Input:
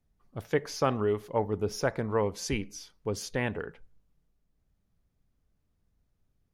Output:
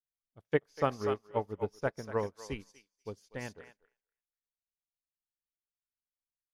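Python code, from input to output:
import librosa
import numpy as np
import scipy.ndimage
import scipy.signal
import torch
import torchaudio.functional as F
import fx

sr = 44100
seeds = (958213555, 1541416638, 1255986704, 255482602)

y = fx.echo_thinned(x, sr, ms=242, feedback_pct=28, hz=760.0, wet_db=-3)
y = fx.upward_expand(y, sr, threshold_db=-48.0, expansion=2.5)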